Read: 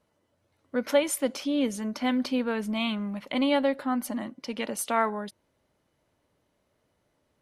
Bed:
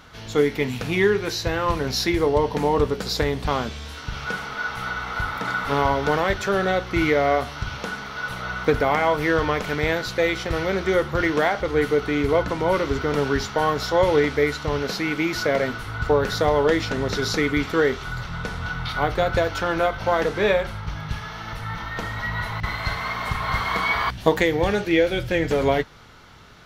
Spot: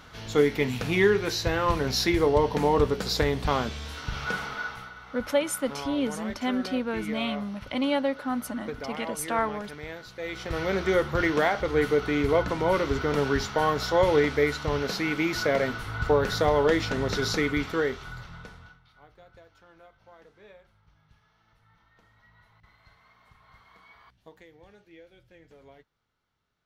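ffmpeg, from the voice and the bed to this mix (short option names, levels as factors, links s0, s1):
-filter_complex "[0:a]adelay=4400,volume=0.841[s0];[1:a]volume=3.76,afade=t=out:st=4.43:d=0.47:silence=0.188365,afade=t=in:st=10.19:d=0.55:silence=0.211349,afade=t=out:st=17.25:d=1.55:silence=0.0334965[s1];[s0][s1]amix=inputs=2:normalize=0"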